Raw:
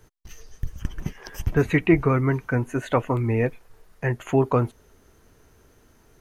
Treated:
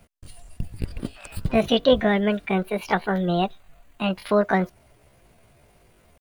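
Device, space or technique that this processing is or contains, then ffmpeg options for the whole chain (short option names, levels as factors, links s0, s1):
chipmunk voice: -filter_complex "[0:a]asettb=1/sr,asplit=3[s0][s1][s2];[s0]atrim=end=2.924[s3];[s1]atrim=start=2.92:end=4.08,asetpts=PTS-STARTPTS,afade=t=in:d=0.004:c=qsin,afade=t=out:st=1.156:d=0.004:c=qsin,bandreject=f=3500:w=6[s4];[s2]atrim=start=4.076[s5];[s3][s4]acrossfade=d=0.004:c1=hsin:c2=qsin[s6];[s6][s5]acrossfade=d=0.004:c1=qsin:c2=hsin,asetrate=68011,aresample=44100,atempo=0.64842"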